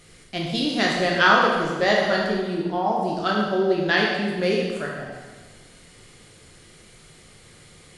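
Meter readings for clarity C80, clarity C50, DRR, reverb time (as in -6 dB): 3.0 dB, 0.5 dB, -3.0 dB, 1.4 s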